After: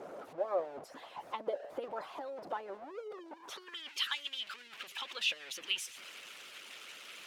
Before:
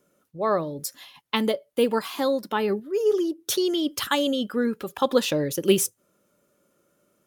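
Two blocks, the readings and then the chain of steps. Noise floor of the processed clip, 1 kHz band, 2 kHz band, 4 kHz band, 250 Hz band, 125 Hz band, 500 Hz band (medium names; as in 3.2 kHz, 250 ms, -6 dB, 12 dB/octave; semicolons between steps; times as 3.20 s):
-55 dBFS, -13.0 dB, -7.5 dB, -7.0 dB, -28.5 dB, under -30 dB, -17.0 dB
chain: jump at every zero crossing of -23 dBFS; band-pass sweep 650 Hz -> 2.8 kHz, 3.32–3.93 s; harmonic-percussive split harmonic -17 dB; trim -3 dB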